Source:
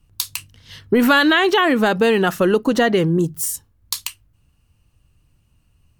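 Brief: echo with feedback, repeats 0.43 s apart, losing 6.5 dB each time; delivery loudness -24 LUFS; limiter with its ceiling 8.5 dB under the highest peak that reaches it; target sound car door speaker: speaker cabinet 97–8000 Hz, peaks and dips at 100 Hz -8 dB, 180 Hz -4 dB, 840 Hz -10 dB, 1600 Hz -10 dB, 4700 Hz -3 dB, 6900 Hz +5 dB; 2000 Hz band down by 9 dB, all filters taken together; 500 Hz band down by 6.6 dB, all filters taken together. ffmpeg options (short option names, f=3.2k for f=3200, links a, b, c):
-af "equalizer=f=500:t=o:g=-7.5,equalizer=f=2k:t=o:g=-3.5,alimiter=limit=-12dB:level=0:latency=1,highpass=97,equalizer=f=100:t=q:w=4:g=-8,equalizer=f=180:t=q:w=4:g=-4,equalizer=f=840:t=q:w=4:g=-10,equalizer=f=1.6k:t=q:w=4:g=-10,equalizer=f=4.7k:t=q:w=4:g=-3,equalizer=f=6.9k:t=q:w=4:g=5,lowpass=f=8k:w=0.5412,lowpass=f=8k:w=1.3066,aecho=1:1:430|860|1290|1720|2150|2580:0.473|0.222|0.105|0.0491|0.0231|0.0109,volume=-1.5dB"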